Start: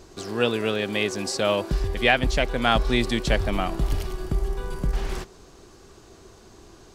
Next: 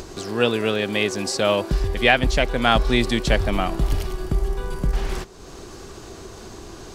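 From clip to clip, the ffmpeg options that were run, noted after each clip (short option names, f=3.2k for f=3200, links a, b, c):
-af "acompressor=mode=upward:threshold=-32dB:ratio=2.5,volume=3dB"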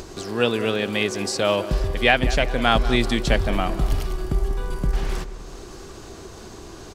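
-filter_complex "[0:a]asplit=2[a][b];[b]adelay=192,lowpass=f=2k:p=1,volume=-13dB,asplit=2[c][d];[d]adelay=192,lowpass=f=2k:p=1,volume=0.52,asplit=2[e][f];[f]adelay=192,lowpass=f=2k:p=1,volume=0.52,asplit=2[g][h];[h]adelay=192,lowpass=f=2k:p=1,volume=0.52,asplit=2[i][j];[j]adelay=192,lowpass=f=2k:p=1,volume=0.52[k];[a][c][e][g][i][k]amix=inputs=6:normalize=0,volume=-1dB"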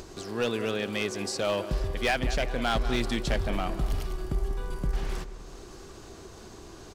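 -af "asoftclip=type=hard:threshold=-14dB,volume=-6.5dB"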